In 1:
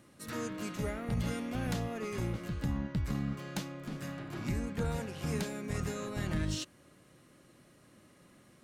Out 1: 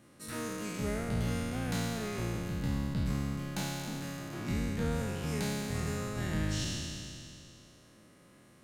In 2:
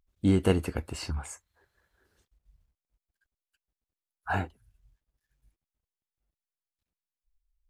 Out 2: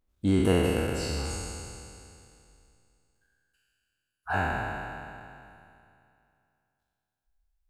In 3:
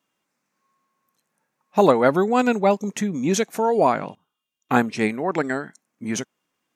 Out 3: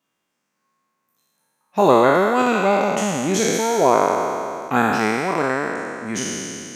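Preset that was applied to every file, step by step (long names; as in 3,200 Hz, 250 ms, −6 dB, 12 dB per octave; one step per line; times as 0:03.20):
peak hold with a decay on every bin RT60 2.60 s
level −2.5 dB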